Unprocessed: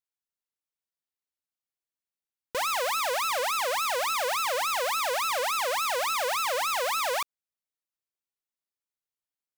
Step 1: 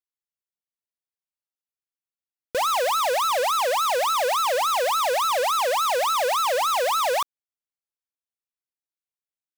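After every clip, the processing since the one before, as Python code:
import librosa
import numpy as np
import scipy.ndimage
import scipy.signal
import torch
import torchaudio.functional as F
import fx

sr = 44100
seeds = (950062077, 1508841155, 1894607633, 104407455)

y = fx.leveller(x, sr, passes=5)
y = y * 10.0 ** (2.0 / 20.0)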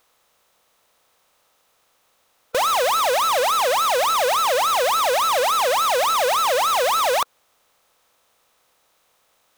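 y = fx.bin_compress(x, sr, power=0.6)
y = y * 10.0 ** (2.0 / 20.0)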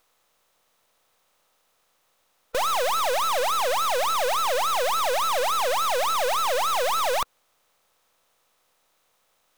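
y = np.where(x < 0.0, 10.0 ** (-7.0 / 20.0) * x, x)
y = y * 10.0 ** (-2.0 / 20.0)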